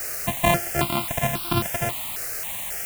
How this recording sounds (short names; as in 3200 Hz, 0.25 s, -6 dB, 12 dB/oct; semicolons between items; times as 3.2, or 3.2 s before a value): a buzz of ramps at a fixed pitch in blocks of 128 samples; chopped level 1.5 Hz, depth 60%, duty 90%; a quantiser's noise floor 6-bit, dither triangular; notches that jump at a steady rate 3.7 Hz 940–1900 Hz